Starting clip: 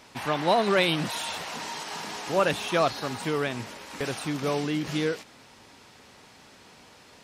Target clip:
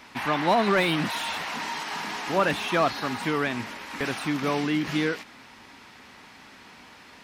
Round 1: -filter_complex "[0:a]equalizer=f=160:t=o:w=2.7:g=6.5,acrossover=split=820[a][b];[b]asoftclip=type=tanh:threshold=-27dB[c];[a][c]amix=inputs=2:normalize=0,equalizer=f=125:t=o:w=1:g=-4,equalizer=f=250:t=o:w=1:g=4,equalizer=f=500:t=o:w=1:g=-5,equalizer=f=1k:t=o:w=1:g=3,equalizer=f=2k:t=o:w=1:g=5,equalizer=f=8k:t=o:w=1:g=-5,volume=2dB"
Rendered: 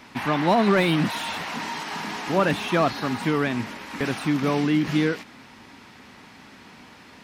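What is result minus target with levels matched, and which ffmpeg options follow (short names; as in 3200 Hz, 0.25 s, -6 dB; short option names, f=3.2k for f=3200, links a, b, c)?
125 Hz band +4.0 dB
-filter_complex "[0:a]acrossover=split=820[a][b];[b]asoftclip=type=tanh:threshold=-27dB[c];[a][c]amix=inputs=2:normalize=0,equalizer=f=125:t=o:w=1:g=-4,equalizer=f=250:t=o:w=1:g=4,equalizer=f=500:t=o:w=1:g=-5,equalizer=f=1k:t=o:w=1:g=3,equalizer=f=2k:t=o:w=1:g=5,equalizer=f=8k:t=o:w=1:g=-5,volume=2dB"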